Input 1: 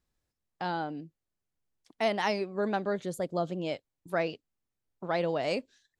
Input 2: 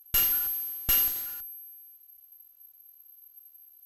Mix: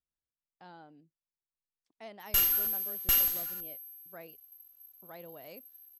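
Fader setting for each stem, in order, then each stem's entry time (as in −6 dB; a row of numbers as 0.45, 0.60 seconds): −19.0, −1.5 decibels; 0.00, 2.20 seconds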